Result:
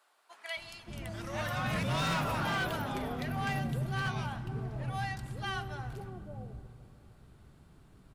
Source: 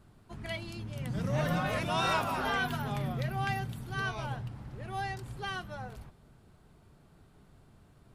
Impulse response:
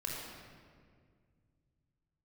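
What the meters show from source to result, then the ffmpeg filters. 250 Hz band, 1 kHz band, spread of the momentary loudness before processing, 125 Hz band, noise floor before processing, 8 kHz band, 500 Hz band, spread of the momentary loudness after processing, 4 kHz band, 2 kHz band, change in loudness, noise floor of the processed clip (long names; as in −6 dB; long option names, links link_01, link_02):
−0.5 dB, −2.0 dB, 13 LU, 0.0 dB, −61 dBFS, +0.5 dB, −2.5 dB, 14 LU, −0.5 dB, −1.0 dB, −1.5 dB, −60 dBFS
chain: -filter_complex "[0:a]acrossover=split=620[link_01][link_02];[link_01]adelay=570[link_03];[link_03][link_02]amix=inputs=2:normalize=0,asplit=2[link_04][link_05];[1:a]atrim=start_sample=2205,asetrate=22491,aresample=44100[link_06];[link_05][link_06]afir=irnorm=-1:irlink=0,volume=-19dB[link_07];[link_04][link_07]amix=inputs=2:normalize=0,volume=28dB,asoftclip=hard,volume=-28dB"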